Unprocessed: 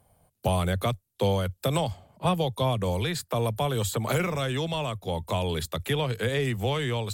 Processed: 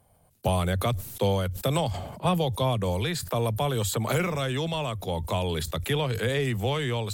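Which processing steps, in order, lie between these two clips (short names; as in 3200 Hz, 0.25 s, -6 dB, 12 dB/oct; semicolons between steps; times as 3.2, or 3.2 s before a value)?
sustainer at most 51 dB/s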